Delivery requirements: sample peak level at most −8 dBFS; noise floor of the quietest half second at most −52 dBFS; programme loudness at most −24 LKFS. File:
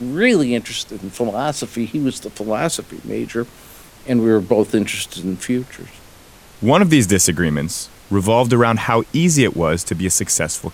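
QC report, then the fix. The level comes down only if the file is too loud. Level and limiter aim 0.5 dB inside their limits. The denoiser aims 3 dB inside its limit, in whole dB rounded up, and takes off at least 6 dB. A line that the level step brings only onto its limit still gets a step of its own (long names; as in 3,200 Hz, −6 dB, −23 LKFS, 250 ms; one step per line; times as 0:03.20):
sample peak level −1.5 dBFS: out of spec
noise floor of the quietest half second −44 dBFS: out of spec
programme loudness −18.0 LKFS: out of spec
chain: broadband denoise 6 dB, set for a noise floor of −44 dBFS
level −6.5 dB
brickwall limiter −8.5 dBFS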